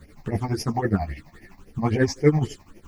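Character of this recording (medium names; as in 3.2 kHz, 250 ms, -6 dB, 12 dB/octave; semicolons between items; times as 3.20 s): a quantiser's noise floor 10-bit, dither none; phasing stages 8, 3.7 Hz, lowest notch 400–1200 Hz; tremolo triangle 12 Hz, depth 85%; a shimmering, thickened sound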